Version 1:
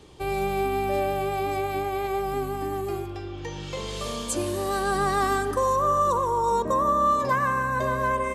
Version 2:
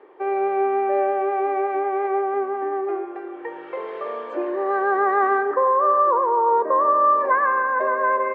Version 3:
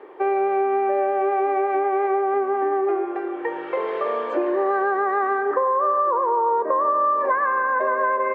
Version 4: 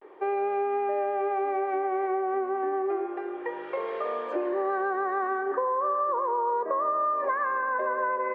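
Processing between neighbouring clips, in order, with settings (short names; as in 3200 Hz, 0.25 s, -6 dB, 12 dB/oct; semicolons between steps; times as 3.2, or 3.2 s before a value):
elliptic band-pass 370–1900 Hz, stop band 80 dB; gain +5.5 dB
compressor, threshold -24 dBFS, peak gain reduction 10 dB; gain +6 dB
vibrato 0.33 Hz 48 cents; gain -6.5 dB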